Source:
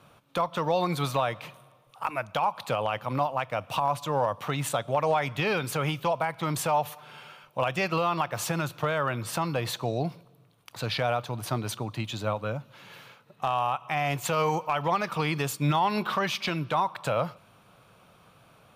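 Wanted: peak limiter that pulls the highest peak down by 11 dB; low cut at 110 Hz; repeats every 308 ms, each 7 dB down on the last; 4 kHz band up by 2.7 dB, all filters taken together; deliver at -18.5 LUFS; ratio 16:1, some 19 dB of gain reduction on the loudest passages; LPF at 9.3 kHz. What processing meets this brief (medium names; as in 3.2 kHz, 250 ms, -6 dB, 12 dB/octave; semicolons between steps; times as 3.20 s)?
high-pass 110 Hz; low-pass 9.3 kHz; peaking EQ 4 kHz +3.5 dB; compression 16:1, threshold -40 dBFS; peak limiter -35 dBFS; feedback delay 308 ms, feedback 45%, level -7 dB; trim +27 dB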